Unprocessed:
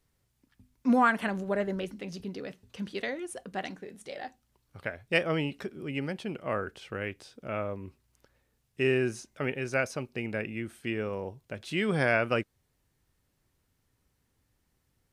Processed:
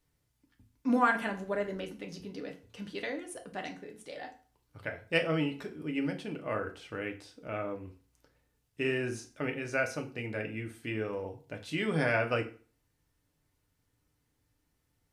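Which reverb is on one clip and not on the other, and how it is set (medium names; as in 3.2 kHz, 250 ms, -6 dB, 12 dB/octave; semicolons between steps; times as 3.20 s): FDN reverb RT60 0.4 s, low-frequency decay 1.05×, high-frequency decay 0.85×, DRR 3 dB; trim -4 dB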